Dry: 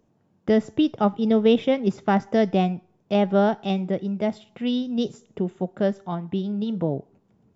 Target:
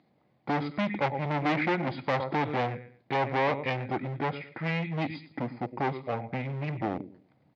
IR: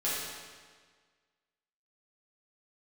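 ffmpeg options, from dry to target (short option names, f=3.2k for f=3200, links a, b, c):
-af "aecho=1:1:109|218|327:0.15|0.0389|0.0101,asetrate=29433,aresample=44100,atempo=1.49831,volume=26.5dB,asoftclip=hard,volume=-26.5dB,highpass=240,equalizer=f=270:t=q:w=4:g=-3,equalizer=f=420:t=q:w=4:g=-7,equalizer=f=800:t=q:w=4:g=7,equalizer=f=2.1k:t=q:w=4:g=8,lowpass=f=5k:w=0.5412,lowpass=f=5k:w=1.3066,volume=4.5dB"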